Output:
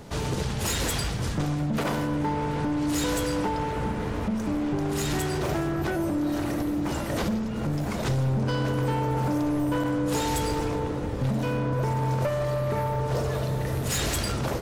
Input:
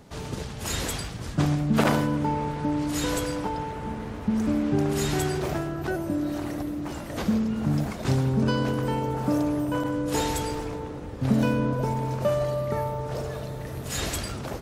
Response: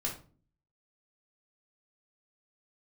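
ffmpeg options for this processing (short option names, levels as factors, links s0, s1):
-filter_complex "[0:a]acompressor=threshold=0.0355:ratio=4,asoftclip=type=hard:threshold=0.0355,asplit=2[s0][s1];[1:a]atrim=start_sample=2205,asetrate=70560,aresample=44100[s2];[s1][s2]afir=irnorm=-1:irlink=0,volume=0.398[s3];[s0][s3]amix=inputs=2:normalize=0,volume=1.78"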